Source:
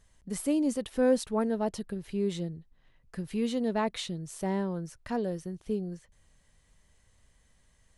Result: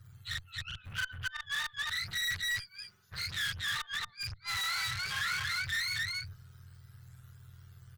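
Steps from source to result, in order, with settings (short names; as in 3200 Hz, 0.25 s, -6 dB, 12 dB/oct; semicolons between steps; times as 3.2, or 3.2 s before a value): spectrum mirrored in octaves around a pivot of 880 Hz; tilt -2 dB/oct; flipped gate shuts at -23 dBFS, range -39 dB; loudspeakers at several distances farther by 14 m 0 dB, 93 m -2 dB; tube stage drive 46 dB, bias 0.65; EQ curve 120 Hz 0 dB, 260 Hz -22 dB, 820 Hz -7 dB, 1400 Hz +10 dB, 8900 Hz +4 dB; gain +7 dB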